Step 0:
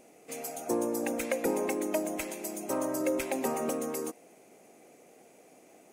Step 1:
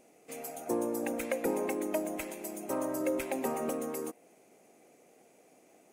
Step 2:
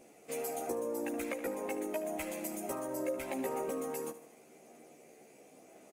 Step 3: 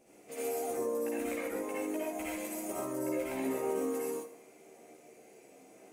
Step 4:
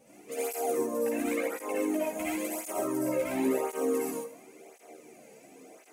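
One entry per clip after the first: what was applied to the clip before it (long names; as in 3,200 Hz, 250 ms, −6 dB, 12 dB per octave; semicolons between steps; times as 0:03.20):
dynamic equaliser 5,600 Hz, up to −5 dB, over −54 dBFS, Q 0.94; in parallel at −8 dB: dead-zone distortion −48.5 dBFS; on the sum: level −4.5 dB
downward compressor, threshold −37 dBFS, peak gain reduction 10.5 dB; multi-voice chorus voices 2, 0.42 Hz, delay 14 ms, depth 1.3 ms; repeating echo 75 ms, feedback 51%, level −14.5 dB; level +6 dB
convolution reverb, pre-delay 48 ms, DRR −7 dB; level −6.5 dB
through-zero flanger with one copy inverted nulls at 0.94 Hz, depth 3 ms; level +7.5 dB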